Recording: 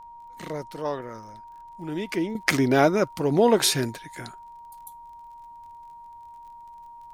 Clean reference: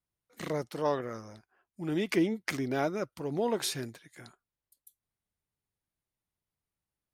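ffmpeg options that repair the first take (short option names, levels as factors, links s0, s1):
-af "adeclick=t=4,bandreject=f=940:w=30,agate=range=0.0891:threshold=0.0141,asetnsamples=n=441:p=0,asendcmd='2.35 volume volume -11.5dB',volume=1"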